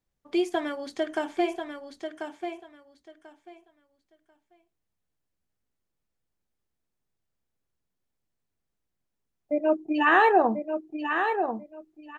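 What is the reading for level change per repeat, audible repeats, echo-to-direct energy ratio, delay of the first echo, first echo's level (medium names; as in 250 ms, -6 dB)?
-14.5 dB, 2, -7.0 dB, 1040 ms, -7.0 dB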